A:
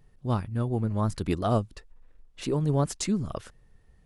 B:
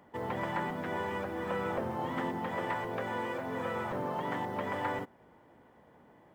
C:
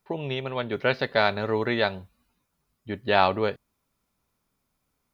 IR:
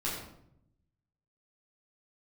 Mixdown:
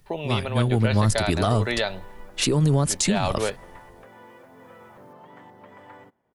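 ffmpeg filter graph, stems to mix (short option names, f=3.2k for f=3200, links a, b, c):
-filter_complex "[0:a]dynaudnorm=f=180:g=7:m=11dB,volume=0dB[a];[1:a]adelay=1050,volume=-12.5dB[b];[2:a]equalizer=f=620:t=o:w=0.77:g=5.5,volume=-2dB[c];[a][c]amix=inputs=2:normalize=0,highshelf=f=2.1k:g=10.5,alimiter=limit=-9dB:level=0:latency=1:release=35,volume=0dB[d];[b][d]amix=inputs=2:normalize=0,acrossover=split=150[e][f];[f]acompressor=threshold=-20dB:ratio=4[g];[e][g]amix=inputs=2:normalize=0"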